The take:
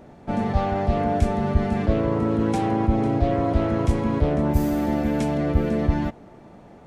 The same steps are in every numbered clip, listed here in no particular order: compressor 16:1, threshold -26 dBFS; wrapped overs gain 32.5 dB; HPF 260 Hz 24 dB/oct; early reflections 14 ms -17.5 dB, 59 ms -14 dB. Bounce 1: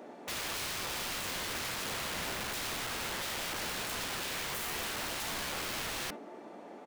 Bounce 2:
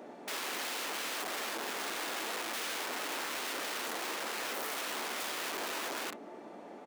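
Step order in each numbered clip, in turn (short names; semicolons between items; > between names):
HPF > compressor > early reflections > wrapped overs; early reflections > compressor > wrapped overs > HPF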